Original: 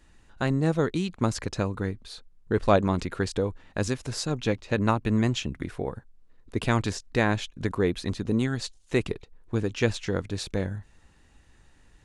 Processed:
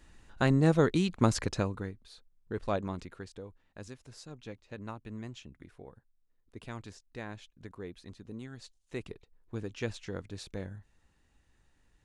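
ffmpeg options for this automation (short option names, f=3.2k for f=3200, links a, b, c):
-af "volume=7.5dB,afade=t=out:st=1.39:d=0.53:silence=0.266073,afade=t=out:st=2.88:d=0.41:silence=0.446684,afade=t=in:st=8.41:d=1.21:silence=0.421697"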